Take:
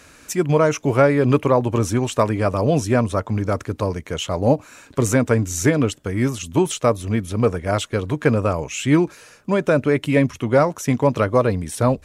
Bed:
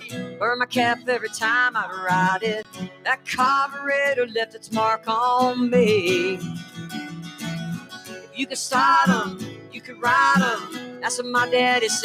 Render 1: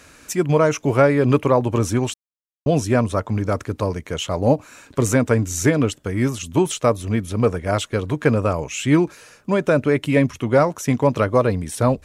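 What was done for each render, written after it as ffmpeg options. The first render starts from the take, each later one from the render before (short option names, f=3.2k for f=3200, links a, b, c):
-filter_complex "[0:a]asplit=3[a][b][c];[a]atrim=end=2.14,asetpts=PTS-STARTPTS,afade=t=out:st=2.136:d=0.004:c=hsin[d];[b]atrim=start=2.14:end=2.66,asetpts=PTS-STARTPTS,volume=0[e];[c]atrim=start=2.66,asetpts=PTS-STARTPTS,afade=t=in:d=0.004:c=hsin[f];[d][e][f]concat=n=3:v=0:a=1"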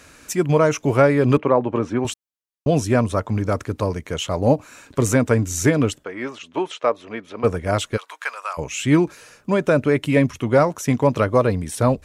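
-filter_complex "[0:a]asettb=1/sr,asplit=3[a][b][c];[a]atrim=end=1.374[d];[b]atrim=start=1.37:end=2.05,asetpts=PTS-STARTPTS,afade=t=in:d=0.004:c=qsin,afade=t=out:st=0.676:d=0.004:c=qsin,highpass=180,lowpass=2.3k[e];[c]atrim=start=2.046[f];[d][e]acrossfade=d=0.004:c1=hsin:c2=qsin[g];[g][f]acrossfade=d=0.004:c1=qsin:c2=hsin,asplit=3[h][i][j];[h]afade=t=out:st=6.03:d=0.02[k];[i]highpass=460,lowpass=3k,afade=t=in:st=6.03:d=0.02,afade=t=out:st=7.43:d=0.02[l];[j]afade=t=in:st=7.43:d=0.02[m];[k][l][m]amix=inputs=3:normalize=0,asplit=3[n][o][p];[n]afade=t=out:st=7.96:d=0.02[q];[o]highpass=f=940:w=0.5412,highpass=f=940:w=1.3066,afade=t=in:st=7.96:d=0.02,afade=t=out:st=8.57:d=0.02[r];[p]afade=t=in:st=8.57:d=0.02[s];[q][r][s]amix=inputs=3:normalize=0"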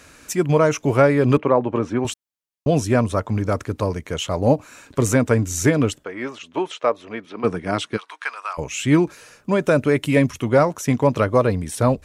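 -filter_complex "[0:a]asettb=1/sr,asplit=3[a][b][c];[a]atrim=end=7.254[d];[b]atrim=start=7.25:end=8.58,asetpts=PTS-STARTPTS,afade=t=in:d=0.004:c=qsin,afade=t=out:st=1.326:d=0.004:c=qsin,highpass=150,equalizer=f=190:t=q:w=4:g=4,equalizer=f=320:t=q:w=4:g=4,equalizer=f=550:t=q:w=4:g=-8,equalizer=f=7.1k:t=q:w=4:g=-9,lowpass=f=9.2k:w=0.5412,lowpass=f=9.2k:w=1.3066[e];[c]atrim=start=8.576[f];[d][e]acrossfade=d=0.004:c1=hsin:c2=qsin[g];[g][f]acrossfade=d=0.004:c1=qsin:c2=hsin,asettb=1/sr,asplit=3[h][i][j];[h]atrim=end=9.604[k];[i]atrim=start=9.6:end=10.49,asetpts=PTS-STARTPTS,afade=t=in:d=0.004:c=qsin,afade=t=out:st=0.886:d=0.004:c=qsin,highshelf=f=5.7k:g=6[l];[j]atrim=start=10.486[m];[k][l]acrossfade=d=0.004:c1=hsin:c2=qsin[n];[n][m]acrossfade=d=0.004:c1=qsin:c2=hsin"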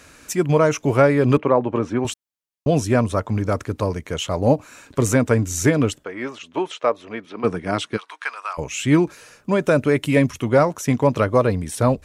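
-af anull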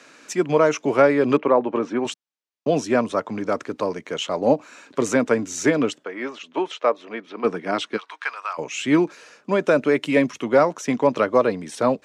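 -filter_complex "[0:a]highpass=140,acrossover=split=180 7300:gain=0.112 1 0.112[a][b][c];[a][b][c]amix=inputs=3:normalize=0"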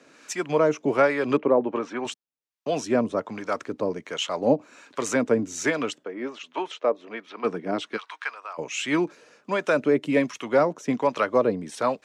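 -filter_complex "[0:a]acrossover=split=660[a][b];[a]aeval=exprs='val(0)*(1-0.7/2+0.7/2*cos(2*PI*1.3*n/s))':c=same[c];[b]aeval=exprs='val(0)*(1-0.7/2-0.7/2*cos(2*PI*1.3*n/s))':c=same[d];[c][d]amix=inputs=2:normalize=0"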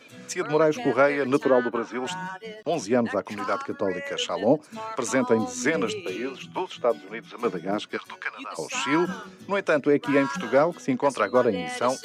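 -filter_complex "[1:a]volume=-14.5dB[a];[0:a][a]amix=inputs=2:normalize=0"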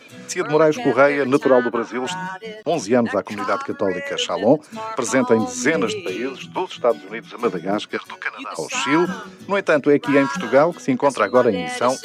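-af "volume=5.5dB"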